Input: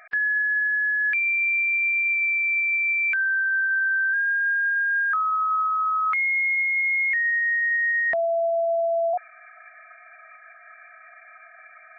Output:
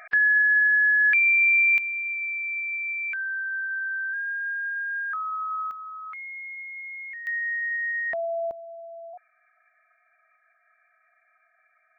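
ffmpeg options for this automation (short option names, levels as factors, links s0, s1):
-af "asetnsamples=n=441:p=0,asendcmd='1.78 volume volume -7dB;5.71 volume volume -15dB;7.27 volume volume -5.5dB;8.51 volume volume -18dB',volume=1.5"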